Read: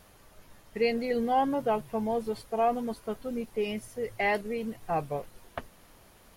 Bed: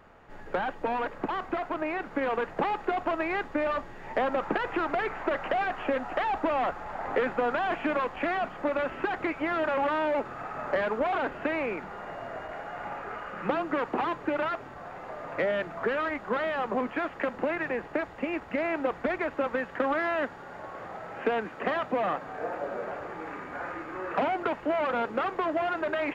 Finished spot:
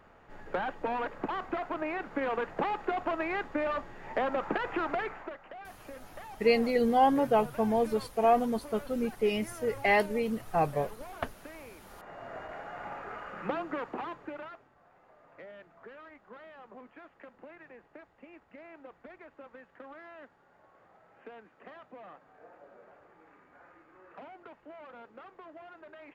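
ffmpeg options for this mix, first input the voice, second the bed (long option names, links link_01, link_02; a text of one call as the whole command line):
ffmpeg -i stem1.wav -i stem2.wav -filter_complex "[0:a]adelay=5650,volume=2.5dB[link_01];[1:a]volume=11.5dB,afade=type=out:start_time=4.94:duration=0.43:silence=0.16788,afade=type=in:start_time=11.79:duration=0.59:silence=0.188365,afade=type=out:start_time=13.33:duration=1.36:silence=0.141254[link_02];[link_01][link_02]amix=inputs=2:normalize=0" out.wav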